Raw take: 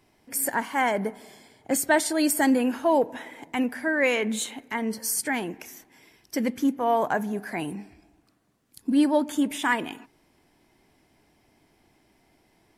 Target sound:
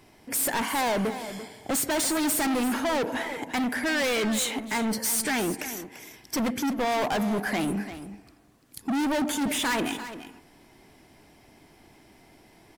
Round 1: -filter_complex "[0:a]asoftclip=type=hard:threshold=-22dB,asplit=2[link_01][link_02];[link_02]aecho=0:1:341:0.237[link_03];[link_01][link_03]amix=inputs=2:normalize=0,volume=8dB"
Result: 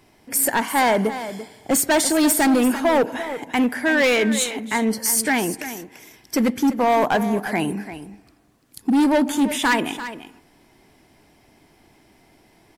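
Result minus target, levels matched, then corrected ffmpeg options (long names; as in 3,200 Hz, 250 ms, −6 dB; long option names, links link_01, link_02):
hard clipping: distortion −7 dB
-filter_complex "[0:a]asoftclip=type=hard:threshold=-32.5dB,asplit=2[link_01][link_02];[link_02]aecho=0:1:341:0.237[link_03];[link_01][link_03]amix=inputs=2:normalize=0,volume=8dB"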